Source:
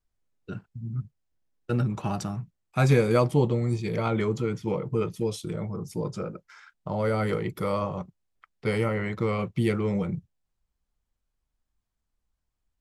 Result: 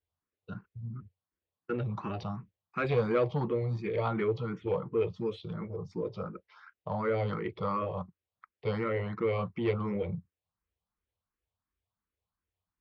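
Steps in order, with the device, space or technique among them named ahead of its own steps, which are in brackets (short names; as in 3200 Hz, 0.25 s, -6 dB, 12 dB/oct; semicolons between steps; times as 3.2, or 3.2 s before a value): barber-pole phaser into a guitar amplifier (endless phaser +2.8 Hz; soft clip -19.5 dBFS, distortion -17 dB; speaker cabinet 82–4000 Hz, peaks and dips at 89 Hz +7 dB, 140 Hz -5 dB, 250 Hz -4 dB, 470 Hz +4 dB, 1100 Hz +5 dB); gain -1.5 dB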